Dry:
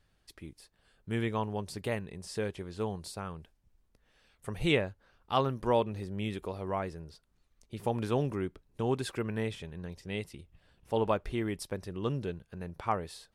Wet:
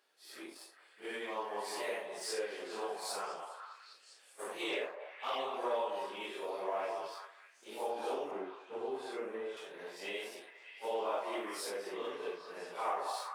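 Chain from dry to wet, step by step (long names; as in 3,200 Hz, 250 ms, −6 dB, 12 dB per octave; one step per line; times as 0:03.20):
random phases in long frames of 200 ms
0:04.89–0:05.54: flanger swept by the level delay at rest 5.8 ms, full sweep at −24.5 dBFS
leveller curve on the samples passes 1
0:08.31–0:09.57: spectral tilt −3 dB per octave
downward compressor 3 to 1, threshold −40 dBFS, peak gain reduction 17.5 dB
high-pass filter 390 Hz 24 dB per octave
echo through a band-pass that steps 202 ms, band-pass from 820 Hz, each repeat 0.7 octaves, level −3 dB
level +4 dB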